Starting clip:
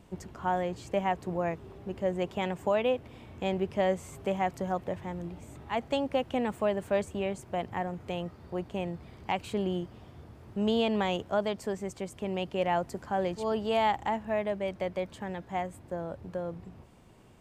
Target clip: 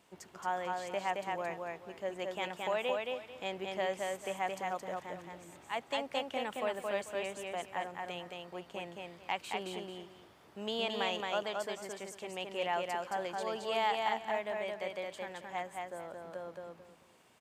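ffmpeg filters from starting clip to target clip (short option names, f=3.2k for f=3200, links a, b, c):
-af "highpass=f=1.1k:p=1,aecho=1:1:221|442|663:0.708|0.17|0.0408,volume=-1dB"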